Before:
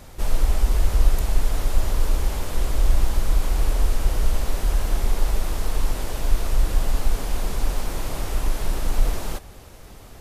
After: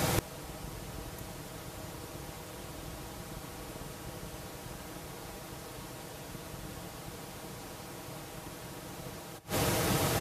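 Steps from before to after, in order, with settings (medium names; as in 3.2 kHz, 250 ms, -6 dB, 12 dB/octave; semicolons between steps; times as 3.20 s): octave divider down 2 oct, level -4 dB; high-pass 78 Hz 24 dB/octave; comb 6.3 ms, depth 52%; inverted gate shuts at -29 dBFS, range -29 dB; trim +16.5 dB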